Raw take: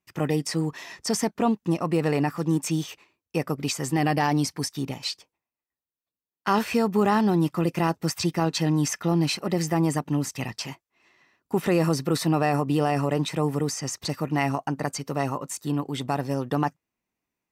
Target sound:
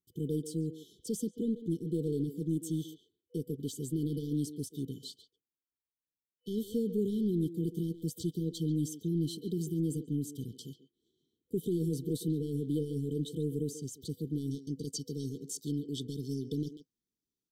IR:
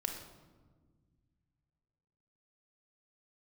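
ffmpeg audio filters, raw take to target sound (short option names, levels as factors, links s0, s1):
-filter_complex "[0:a]asplit=2[s0][s1];[s1]adelay=140,highpass=300,lowpass=3400,asoftclip=type=hard:threshold=0.119,volume=0.282[s2];[s0][s2]amix=inputs=2:normalize=0,asoftclip=type=tanh:threshold=0.168,asetnsamples=n=441:p=0,asendcmd='14.51 equalizer g 3.5',equalizer=f=5200:w=1.7:g=-13.5,afftfilt=real='re*(1-between(b*sr/4096,490,3000))':imag='im*(1-between(b*sr/4096,490,3000))':win_size=4096:overlap=0.75,volume=0.447"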